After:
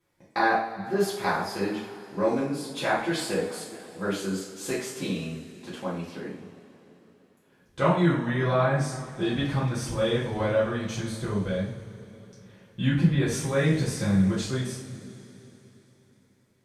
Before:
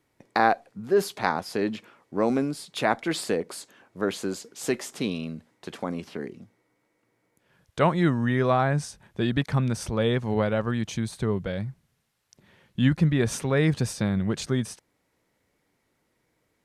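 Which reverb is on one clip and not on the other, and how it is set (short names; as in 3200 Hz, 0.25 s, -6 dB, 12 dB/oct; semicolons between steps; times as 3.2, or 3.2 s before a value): two-slope reverb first 0.48 s, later 3.7 s, from -19 dB, DRR -8.5 dB; gain -9.5 dB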